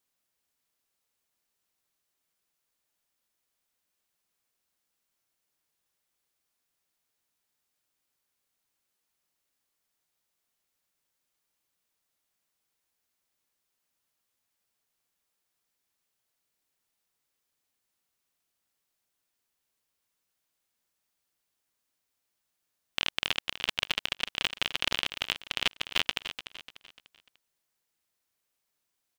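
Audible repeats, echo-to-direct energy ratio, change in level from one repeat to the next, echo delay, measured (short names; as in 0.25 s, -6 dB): 4, -10.0 dB, -8.0 dB, 0.296 s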